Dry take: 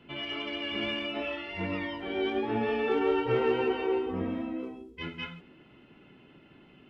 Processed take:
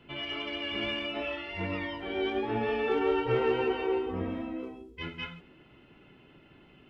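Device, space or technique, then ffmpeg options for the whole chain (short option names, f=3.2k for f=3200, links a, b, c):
low shelf boost with a cut just above: -af "lowshelf=f=84:g=6,equalizer=f=220:t=o:w=0.96:g=-4"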